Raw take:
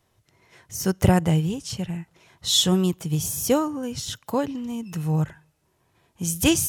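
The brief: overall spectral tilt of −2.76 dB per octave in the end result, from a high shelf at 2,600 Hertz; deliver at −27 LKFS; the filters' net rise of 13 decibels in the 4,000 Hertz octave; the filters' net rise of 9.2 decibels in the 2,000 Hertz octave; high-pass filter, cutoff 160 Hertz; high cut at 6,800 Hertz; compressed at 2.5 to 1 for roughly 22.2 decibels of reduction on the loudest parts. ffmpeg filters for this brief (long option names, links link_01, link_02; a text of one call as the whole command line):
ffmpeg -i in.wav -af "highpass=160,lowpass=6800,equalizer=frequency=2000:width_type=o:gain=5,highshelf=frequency=2600:gain=7,equalizer=frequency=4000:width_type=o:gain=9,acompressor=threshold=-39dB:ratio=2.5,volume=7.5dB" out.wav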